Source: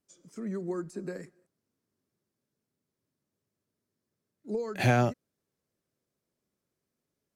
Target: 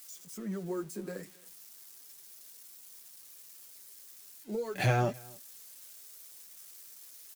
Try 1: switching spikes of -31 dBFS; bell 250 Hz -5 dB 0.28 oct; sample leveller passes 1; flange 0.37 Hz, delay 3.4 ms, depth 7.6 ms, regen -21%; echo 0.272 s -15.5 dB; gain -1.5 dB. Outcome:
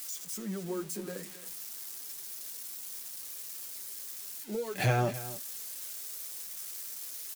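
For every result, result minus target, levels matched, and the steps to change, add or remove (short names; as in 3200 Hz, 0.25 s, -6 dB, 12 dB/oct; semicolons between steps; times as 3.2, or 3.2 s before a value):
echo-to-direct +9.5 dB; switching spikes: distortion +9 dB
change: echo 0.272 s -25 dB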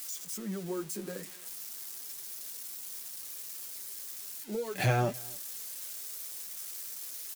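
switching spikes: distortion +9 dB
change: switching spikes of -40 dBFS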